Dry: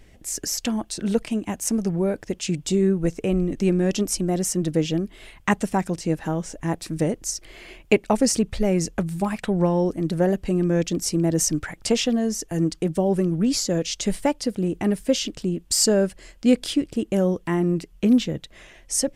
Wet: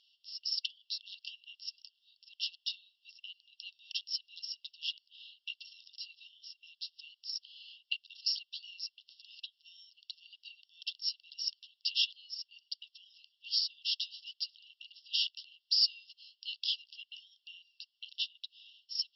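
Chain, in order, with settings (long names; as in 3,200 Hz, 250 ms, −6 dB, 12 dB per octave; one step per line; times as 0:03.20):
linear-phase brick-wall band-pass 2,700–5,600 Hz
level −1.5 dB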